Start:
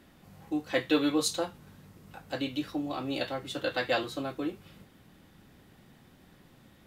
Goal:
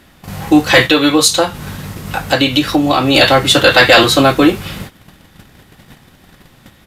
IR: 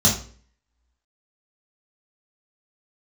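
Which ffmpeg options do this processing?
-filter_complex "[0:a]agate=range=0.178:threshold=0.002:ratio=16:detection=peak,equalizer=f=300:t=o:w=2.5:g=-6,asplit=3[s0][s1][s2];[s0]afade=t=out:st=0.86:d=0.02[s3];[s1]acompressor=threshold=0.01:ratio=3,afade=t=in:st=0.86:d=0.02,afade=t=out:st=3.14:d=0.02[s4];[s2]afade=t=in:st=3.14:d=0.02[s5];[s3][s4][s5]amix=inputs=3:normalize=0,apsyclip=37.6,aresample=32000,aresample=44100,volume=0.841"

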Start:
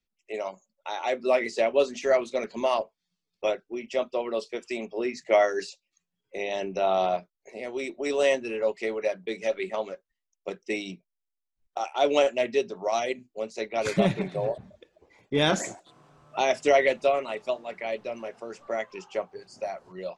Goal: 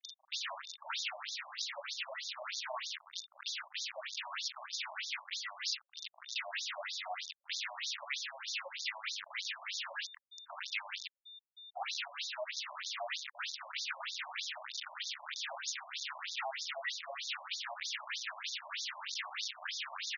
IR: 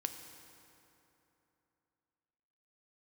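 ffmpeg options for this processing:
-filter_complex "[0:a]aeval=exprs='val(0)+0.5*0.0355*sgn(val(0))':c=same,highpass=f=52:w=0.5412,highpass=f=52:w=1.3066,aresample=16000,asoftclip=type=tanh:threshold=0.0841,aresample=44100,acrossover=split=240|3000[s0][s1][s2];[s0]acompressor=threshold=0.02:ratio=6[s3];[s3][s1][s2]amix=inputs=3:normalize=0,acrusher=bits=4:mix=0:aa=0.000001,aeval=exprs='val(0)+0.002*sin(2*PI*3600*n/s)':c=same,acompressor=threshold=0.0316:ratio=6,tiltshelf=f=720:g=-6.5,bandreject=f=60:t=h:w=6,bandreject=f=120:t=h:w=6,bandreject=f=180:t=h:w=6,bandreject=f=240:t=h:w=6,bandreject=f=300:t=h:w=6,bandreject=f=360:t=h:w=6,bandreject=f=420:t=h:w=6,bandreject=f=480:t=h:w=6,bandreject=f=540:t=h:w=6,acrossover=split=700[s4][s5];[s5]adelay=40[s6];[s4][s6]amix=inputs=2:normalize=0,afftfilt=real='re*between(b*sr/1024,780*pow(5000/780,0.5+0.5*sin(2*PI*3.2*pts/sr))/1.41,780*pow(5000/780,0.5+0.5*sin(2*PI*3.2*pts/sr))*1.41)':imag='im*between(b*sr/1024,780*pow(5000/780,0.5+0.5*sin(2*PI*3.2*pts/sr))/1.41,780*pow(5000/780,0.5+0.5*sin(2*PI*3.2*pts/sr))*1.41)':win_size=1024:overlap=0.75,volume=0.841"

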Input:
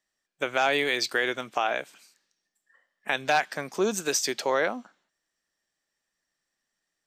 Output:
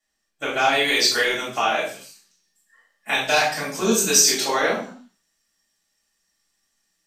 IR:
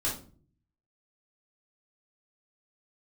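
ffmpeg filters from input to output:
-filter_complex "[0:a]asetnsamples=n=441:p=0,asendcmd='0.84 highshelf g 11',highshelf=f=3000:g=4.5[s0];[1:a]atrim=start_sample=2205,afade=t=out:st=0.26:d=0.01,atrim=end_sample=11907,asetrate=31752,aresample=44100[s1];[s0][s1]afir=irnorm=-1:irlink=0,volume=0.596"

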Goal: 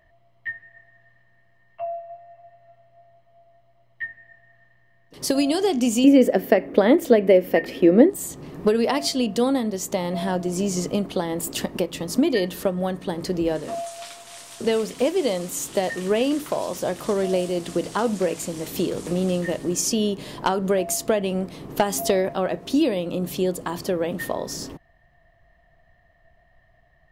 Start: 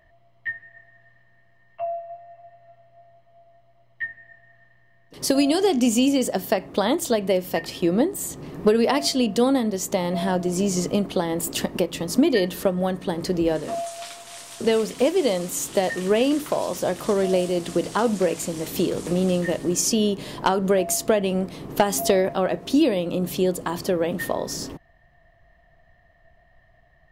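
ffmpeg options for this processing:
-filter_complex "[0:a]asettb=1/sr,asplit=3[s0][s1][s2];[s0]atrim=end=6.044[s3];[s1]atrim=start=6.04:end=8.1,asetpts=PTS-STARTPTS,afade=t=in:d=0.004:c=qsin,afade=t=out:st=2.056:d=0.004:c=qsin,equalizer=f=125:t=o:w=1:g=-6,equalizer=f=250:t=o:w=1:g=8,equalizer=f=500:t=o:w=1:g=9,equalizer=f=1000:t=o:w=1:g=-5,equalizer=f=2000:t=o:w=1:g=9,equalizer=f=4000:t=o:w=1:g=-6,equalizer=f=8000:t=o:w=1:g=-9[s4];[s2]atrim=start=8.096[s5];[s3][s4]acrossfade=d=0.004:c1=hsin:c2=qsin[s6];[s6][s5]acrossfade=d=0.004:c1=qsin:c2=hsin,volume=0.841"

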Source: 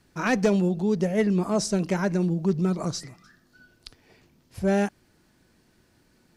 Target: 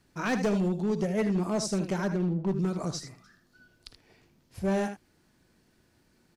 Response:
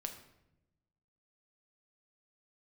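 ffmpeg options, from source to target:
-filter_complex "[0:a]asplit=3[s0][s1][s2];[s0]afade=t=out:st=2.07:d=0.02[s3];[s1]adynamicsmooth=sensitivity=5.5:basefreq=980,afade=t=in:st=2.07:d=0.02,afade=t=out:st=2.52:d=0.02[s4];[s2]afade=t=in:st=2.52:d=0.02[s5];[s3][s4][s5]amix=inputs=3:normalize=0,aecho=1:1:52|78:0.133|0.299,asoftclip=type=hard:threshold=0.126,volume=0.631"

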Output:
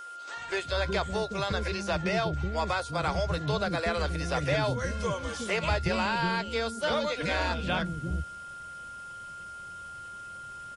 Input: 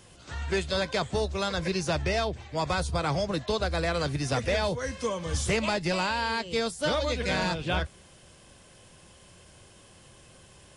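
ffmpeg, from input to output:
-filter_complex "[0:a]acrossover=split=3900[s0][s1];[s1]acompressor=threshold=0.00708:ratio=4:attack=1:release=60[s2];[s0][s2]amix=inputs=2:normalize=0,acrossover=split=360[s3][s4];[s3]adelay=370[s5];[s5][s4]amix=inputs=2:normalize=0,aeval=exprs='val(0)+0.01*sin(2*PI*1400*n/s)':c=same"

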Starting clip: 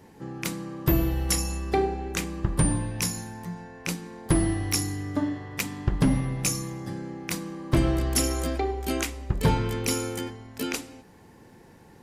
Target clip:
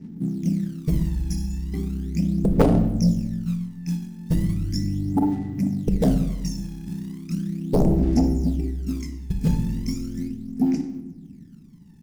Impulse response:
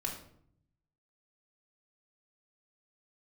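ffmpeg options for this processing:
-filter_complex "[0:a]firequalizer=gain_entry='entry(110,0);entry(160,14);entry(260,11);entry(470,-14);entry(860,-19);entry(1300,-25);entry(2000,-10);entry(3500,-28);entry(5200,-1);entry(8600,-16)':delay=0.05:min_phase=1,acrusher=bits=6:mode=log:mix=0:aa=0.000001,aphaser=in_gain=1:out_gain=1:delay=1.2:decay=0.72:speed=0.37:type=sinusoidal,aeval=exprs='2.82*(cos(1*acos(clip(val(0)/2.82,-1,1)))-cos(1*PI/2))+1.26*(cos(3*acos(clip(val(0)/2.82,-1,1)))-cos(3*PI/2))+0.562*(cos(7*acos(clip(val(0)/2.82,-1,1)))-cos(7*PI/2))':c=same,asplit=2[s0][s1];[1:a]atrim=start_sample=2205,asetrate=26460,aresample=44100[s2];[s1][s2]afir=irnorm=-1:irlink=0,volume=0.376[s3];[s0][s3]amix=inputs=2:normalize=0,volume=0.188"

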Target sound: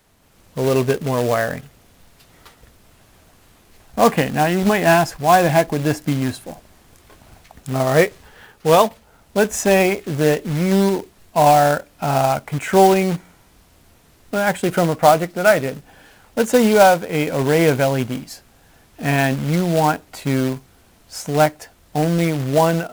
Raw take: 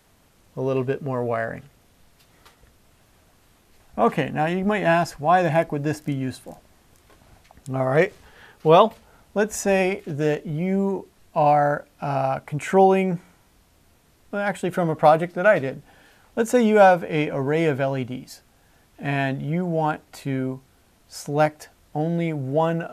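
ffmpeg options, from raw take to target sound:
-af "dynaudnorm=f=200:g=3:m=2,acrusher=bits=3:mode=log:mix=0:aa=0.000001"

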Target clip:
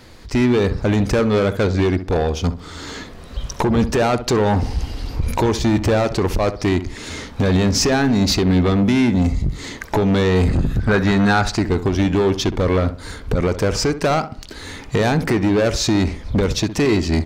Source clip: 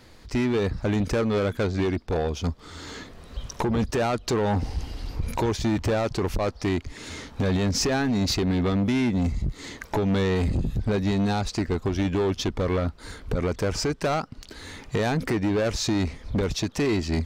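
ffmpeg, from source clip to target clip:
-filter_complex "[0:a]asettb=1/sr,asplit=3[s0][s1][s2];[s0]atrim=end=10.484[s3];[s1]atrim=start=10.48:end=11.56,asetpts=PTS-STARTPTS,afade=t=in:d=0.004:c=qsin,afade=t=out:st=1.076:d=0.004:c=qsin,equalizer=f=1500:w=1.6:g=11.5[s4];[s2]atrim=start=11.556[s5];[s3][s4]acrossfade=d=0.004:c1=hsin:c2=qsin[s6];[s6][s5]acrossfade=d=0.004:c1=qsin:c2=hsin,asplit=2[s7][s8];[s8]adelay=65,lowpass=f=1600:p=1,volume=0.266,asplit=2[s9][s10];[s10]adelay=65,lowpass=f=1600:p=1,volume=0.35,asplit=2[s11][s12];[s12]adelay=65,lowpass=f=1600:p=1,volume=0.35,asplit=2[s13][s14];[s14]adelay=65,lowpass=f=1600:p=1,volume=0.35[s15];[s9][s11][s13][s15]amix=inputs=4:normalize=0[s16];[s7][s16]amix=inputs=2:normalize=0,volume=2.24"

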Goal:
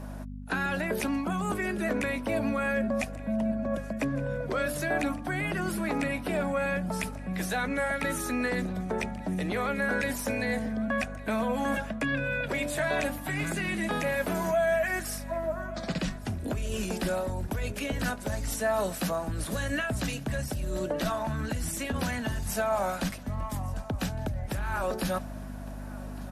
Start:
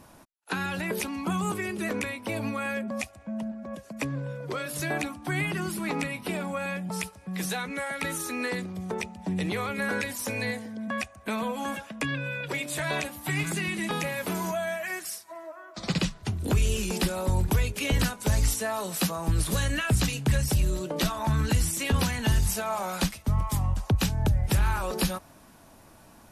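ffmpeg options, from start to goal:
-af "acontrast=64,aeval=exprs='val(0)+0.0224*(sin(2*PI*50*n/s)+sin(2*PI*2*50*n/s)/2+sin(2*PI*3*50*n/s)/3+sin(2*PI*4*50*n/s)/4+sin(2*PI*5*50*n/s)/5)':c=same,areverse,acompressor=threshold=0.0562:ratio=6,areverse,equalizer=f=250:t=o:w=0.67:g=8,equalizer=f=630:t=o:w=0.67:g=10,equalizer=f=1600:t=o:w=0.67:g=7,aecho=1:1:1162|2324|3486:0.0944|0.0359|0.0136,volume=0.501"

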